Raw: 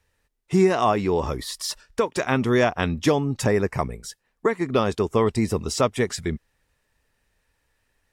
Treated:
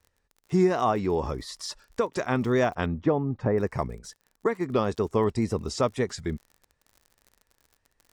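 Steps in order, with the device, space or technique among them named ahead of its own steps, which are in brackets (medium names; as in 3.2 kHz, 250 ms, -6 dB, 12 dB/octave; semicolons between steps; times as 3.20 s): lo-fi chain (low-pass 6.9 kHz 12 dB/octave; wow and flutter; crackle 51 per s -37 dBFS); 2.86–3.58 s: low-pass 1.5 kHz 12 dB/octave; peaking EQ 2.8 kHz -5.5 dB 1.1 oct; trim -3.5 dB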